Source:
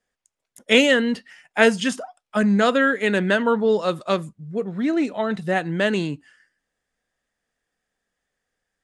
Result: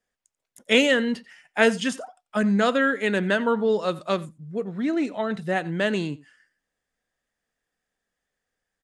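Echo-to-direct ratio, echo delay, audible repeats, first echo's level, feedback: -21.5 dB, 89 ms, 1, -21.5 dB, no regular repeats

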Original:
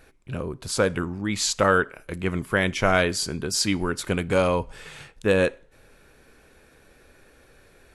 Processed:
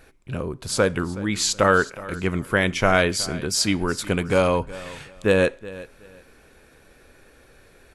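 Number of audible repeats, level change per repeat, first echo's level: 2, -12.5 dB, -18.0 dB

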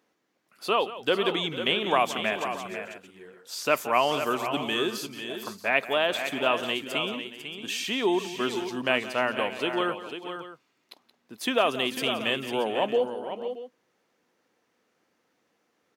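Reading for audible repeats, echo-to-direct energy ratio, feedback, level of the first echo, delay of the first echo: 4, -7.0 dB, no regular repeats, -15.0 dB, 175 ms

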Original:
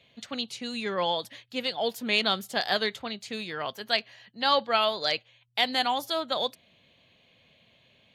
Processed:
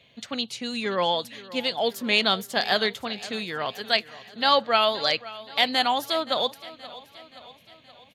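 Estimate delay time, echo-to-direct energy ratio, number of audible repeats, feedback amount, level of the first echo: 524 ms, -16.5 dB, 4, 55%, -18.0 dB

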